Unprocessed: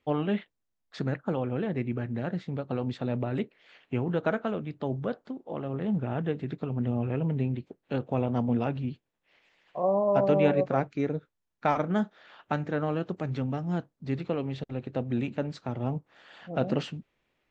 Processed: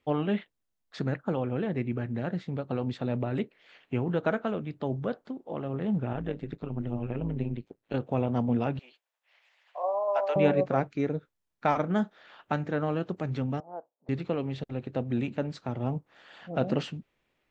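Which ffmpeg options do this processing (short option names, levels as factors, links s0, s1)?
-filter_complex "[0:a]asettb=1/sr,asplit=3[s0][s1][s2];[s0]atrim=end=6.134[s3];[s1]atrim=start=6.13:end=7.94,asetpts=PTS-STARTPTS,afade=t=in:d=0.004:c=qsin,afade=t=out:st=1.806:d=0.004:c=qsin,tremolo=f=110:d=0.788[s4];[s2]atrim=start=7.936[s5];[s3][s4]acrossfade=d=0.004:c1=hsin:c2=qsin[s6];[s6][s5]acrossfade=d=0.004:c1=qsin:c2=hsin,asettb=1/sr,asplit=3[s7][s8][s9];[s7]atrim=end=8.794[s10];[s8]atrim=start=8.79:end=10.36,asetpts=PTS-STARTPTS,afade=t=in:d=0.004:c=qsin,afade=t=out:st=1.566:d=0.004:c=qsin,highpass=f=620:w=0.5412,highpass=f=620:w=1.3066[s11];[s9]atrim=start=10.356[s12];[s10][s11]acrossfade=d=0.004:c1=hsin:c2=qsin[s13];[s13][s12]acrossfade=d=0.004:c1=qsin:c2=hsin,asettb=1/sr,asplit=3[s14][s15][s16];[s14]atrim=end=13.604[s17];[s15]atrim=start=13.6:end=14.09,asetpts=PTS-STARTPTS,afade=t=in:d=0.004:c=qsin,afade=t=out:st=0.486:d=0.004:c=qsin,asuperpass=centerf=680:order=4:qfactor=1.5[s18];[s16]atrim=start=14.086[s19];[s17][s18]acrossfade=d=0.004:c1=hsin:c2=qsin[s20];[s20][s19]acrossfade=d=0.004:c1=qsin:c2=hsin"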